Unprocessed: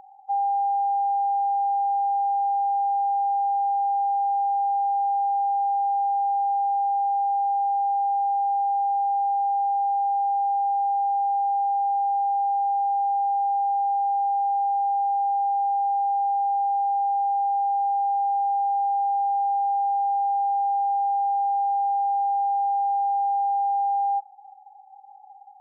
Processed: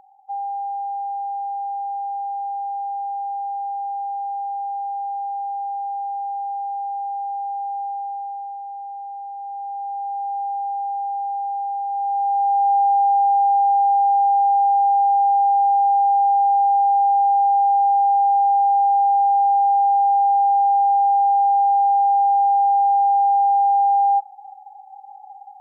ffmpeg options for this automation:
-af "volume=4.47,afade=t=out:st=7.81:d=0.79:silence=0.501187,afade=t=in:st=9.35:d=1.04:silence=0.421697,afade=t=in:st=11.88:d=0.86:silence=0.354813"

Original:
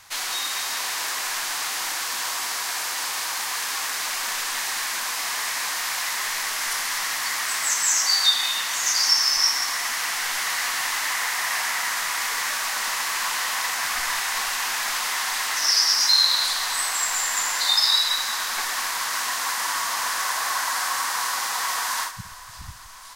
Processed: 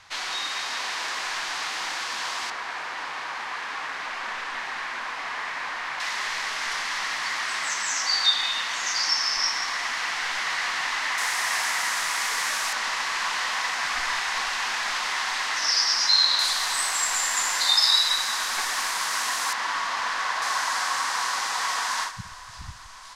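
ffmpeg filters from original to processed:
-af "asetnsamples=n=441:p=0,asendcmd='2.5 lowpass f 2300;6 lowpass f 4400;11.18 lowpass f 9600;12.73 lowpass f 5100;16.39 lowpass f 10000;19.53 lowpass f 3900;20.42 lowpass f 6800',lowpass=4600"

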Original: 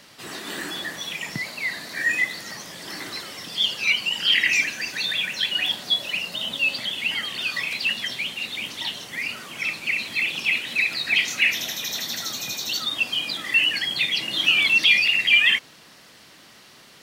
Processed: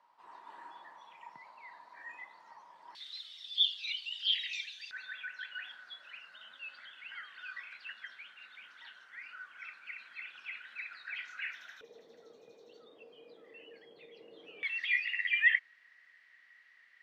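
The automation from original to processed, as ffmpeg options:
-af "asetnsamples=n=441:p=0,asendcmd='2.95 bandpass f 3600;4.91 bandpass f 1500;11.81 bandpass f 460;14.63 bandpass f 1900',bandpass=f=950:t=q:w=13:csg=0"

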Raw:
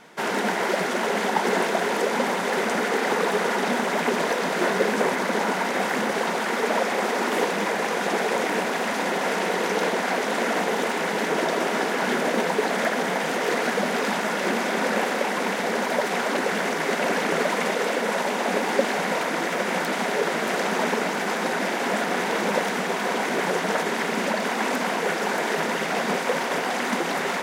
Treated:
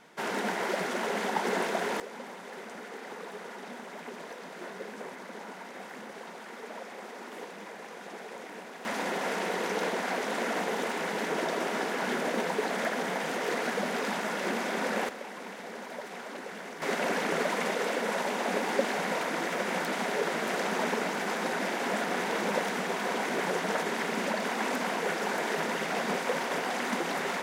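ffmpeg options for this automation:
-af "asetnsamples=n=441:p=0,asendcmd='2 volume volume -19dB;8.85 volume volume -7dB;15.09 volume volume -16.5dB;16.82 volume volume -6dB',volume=0.447"

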